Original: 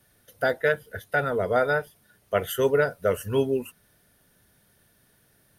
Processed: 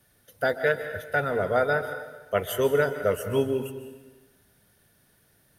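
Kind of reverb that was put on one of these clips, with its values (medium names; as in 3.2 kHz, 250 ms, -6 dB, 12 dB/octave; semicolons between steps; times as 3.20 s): plate-style reverb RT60 1.2 s, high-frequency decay 0.9×, pre-delay 120 ms, DRR 9 dB; trim -1 dB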